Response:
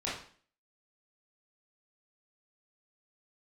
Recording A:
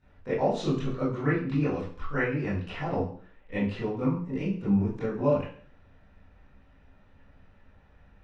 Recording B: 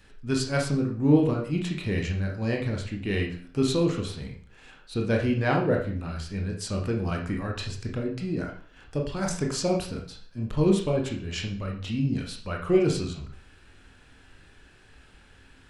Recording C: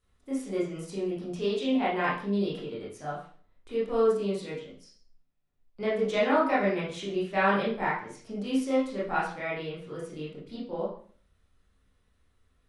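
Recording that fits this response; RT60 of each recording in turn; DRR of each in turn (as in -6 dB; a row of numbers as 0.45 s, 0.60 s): C; 0.45 s, 0.45 s, 0.45 s; -13.5 dB, 0.0 dB, -8.5 dB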